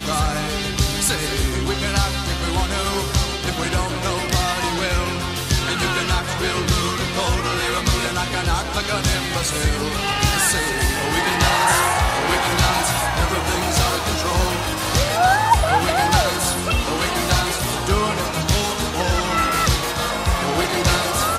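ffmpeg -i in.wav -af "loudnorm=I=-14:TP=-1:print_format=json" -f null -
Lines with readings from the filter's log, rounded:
"input_i" : "-19.5",
"input_tp" : "-3.0",
"input_lra" : "3.1",
"input_thresh" : "-29.5",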